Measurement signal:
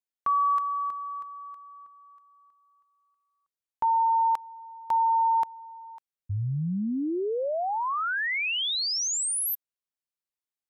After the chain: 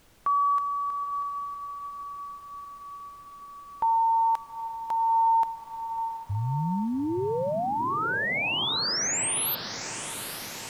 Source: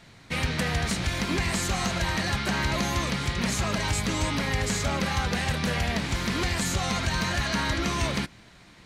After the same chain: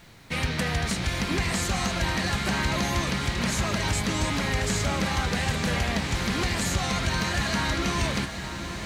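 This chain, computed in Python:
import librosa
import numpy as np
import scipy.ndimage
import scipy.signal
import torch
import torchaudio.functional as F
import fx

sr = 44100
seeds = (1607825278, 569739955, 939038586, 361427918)

y = fx.dmg_noise_colour(x, sr, seeds[0], colour='pink', level_db=-59.0)
y = fx.echo_diffused(y, sr, ms=832, feedback_pct=68, wet_db=-10.0)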